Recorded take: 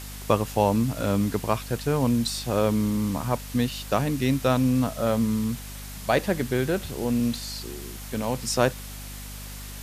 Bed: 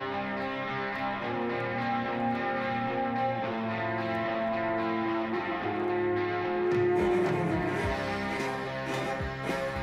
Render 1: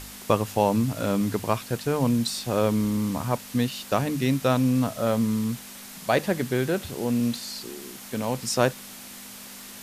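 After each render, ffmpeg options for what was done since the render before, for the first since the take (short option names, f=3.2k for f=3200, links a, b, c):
-af "bandreject=f=50:t=h:w=4,bandreject=f=100:t=h:w=4,bandreject=f=150:t=h:w=4"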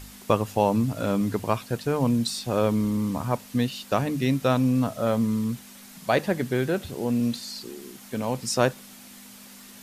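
-af "afftdn=nr=6:nf=-42"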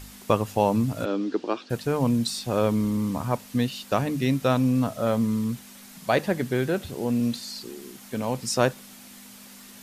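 -filter_complex "[0:a]asplit=3[a][b][c];[a]afade=t=out:st=1.04:d=0.02[d];[b]highpass=f=270:w=0.5412,highpass=f=270:w=1.3066,equalizer=f=330:t=q:w=4:g=9,equalizer=f=670:t=q:w=4:g=-5,equalizer=f=1k:t=q:w=4:g=-7,equalizer=f=2.1k:t=q:w=4:g=-8,lowpass=f=5.2k:w=0.5412,lowpass=f=5.2k:w=1.3066,afade=t=in:st=1.04:d=0.02,afade=t=out:st=1.69:d=0.02[e];[c]afade=t=in:st=1.69:d=0.02[f];[d][e][f]amix=inputs=3:normalize=0"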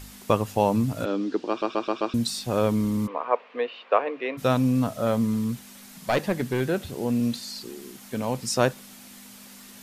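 -filter_complex "[0:a]asplit=3[a][b][c];[a]afade=t=out:st=3.06:d=0.02[d];[b]highpass=f=400:w=0.5412,highpass=f=400:w=1.3066,equalizer=f=470:t=q:w=4:g=8,equalizer=f=670:t=q:w=4:g=3,equalizer=f=1.1k:t=q:w=4:g=7,equalizer=f=2.4k:t=q:w=4:g=4,lowpass=f=2.8k:w=0.5412,lowpass=f=2.8k:w=1.3066,afade=t=in:st=3.06:d=0.02,afade=t=out:st=4.37:d=0.02[e];[c]afade=t=in:st=4.37:d=0.02[f];[d][e][f]amix=inputs=3:normalize=0,asettb=1/sr,asplit=3[g][h][i];[g]atrim=end=5.334[j];[h]atrim=start=5.33:end=6.61,asetpts=PTS-STARTPTS,afade=t=in:d=0.004:c=qsin,afade=t=out:st=1.276:d=0.004:c=qsin,aeval=exprs='clip(val(0),-1,0.106)':c=same[k];[i]atrim=start=6.606[l];[j][k]acrossfade=d=0.004:c1=hsin:c2=qsin[m];[m][l]acrossfade=d=0.004:c1=qsin:c2=hsin,asplit=6[n][o][p][q][r][s];[n]atrim=end=1.622[t];[o]atrim=start=1.488:end=1.622[u];[p]atrim=start=1.488:end=1.622[v];[q]atrim=start=1.488:end=1.622[w];[r]atrim=start=1.488:end=1.622[x];[s]atrim=start=2.138[y];[t][u]acrossfade=d=0.004:c1=hsin:c2=hsin[z];[z][v]acrossfade=d=0.004:c1=hsin:c2=hsin[aa];[aa][w]acrossfade=d=0.004:c1=hsin:c2=hsin[ab];[ab][x]acrossfade=d=0.004:c1=hsin:c2=hsin[ac];[ac][y]acrossfade=d=0.004:c1=hsin:c2=hsin"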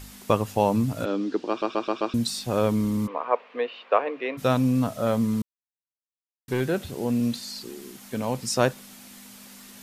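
-filter_complex "[0:a]asplit=3[a][b][c];[a]atrim=end=5.42,asetpts=PTS-STARTPTS,afade=t=out:st=5.416:d=0.004:c=hsin[d];[b]atrim=start=5.42:end=6.48,asetpts=PTS-STARTPTS,volume=0[e];[c]atrim=start=6.48,asetpts=PTS-STARTPTS,afade=t=in:d=0.004:c=hsin[f];[d][e][f]concat=n=3:v=0:a=1"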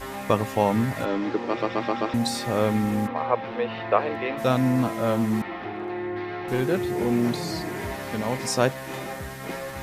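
-filter_complex "[1:a]volume=-2dB[a];[0:a][a]amix=inputs=2:normalize=0"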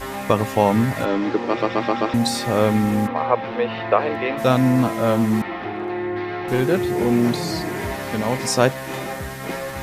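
-af "volume=5dB,alimiter=limit=-3dB:level=0:latency=1"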